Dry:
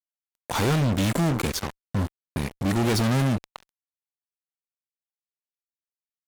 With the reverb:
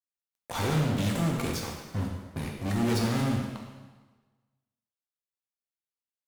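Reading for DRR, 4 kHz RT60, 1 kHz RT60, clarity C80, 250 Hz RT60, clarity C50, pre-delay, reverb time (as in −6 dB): −0.5 dB, 1.2 s, 1.3 s, 4.5 dB, 1.3 s, 3.0 dB, 5 ms, 1.3 s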